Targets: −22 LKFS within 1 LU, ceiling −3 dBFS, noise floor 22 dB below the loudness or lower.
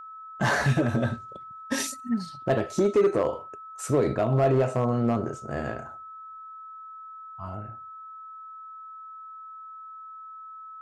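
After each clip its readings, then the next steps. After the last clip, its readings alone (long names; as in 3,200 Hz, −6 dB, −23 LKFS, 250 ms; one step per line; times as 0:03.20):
share of clipped samples 0.6%; peaks flattened at −15.5 dBFS; interfering tone 1,300 Hz; level of the tone −40 dBFS; integrated loudness −26.5 LKFS; sample peak −15.5 dBFS; target loudness −22.0 LKFS
→ clipped peaks rebuilt −15.5 dBFS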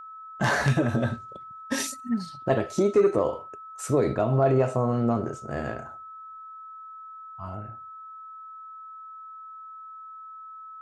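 share of clipped samples 0.0%; interfering tone 1,300 Hz; level of the tone −40 dBFS
→ notch filter 1,300 Hz, Q 30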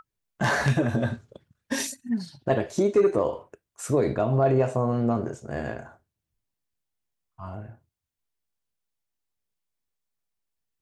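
interfering tone none found; integrated loudness −25.5 LKFS; sample peak −7.0 dBFS; target loudness −22.0 LKFS
→ level +3.5 dB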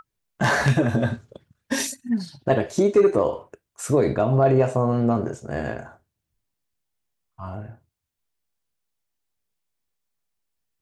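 integrated loudness −22.0 LKFS; sample peak −3.5 dBFS; background noise floor −82 dBFS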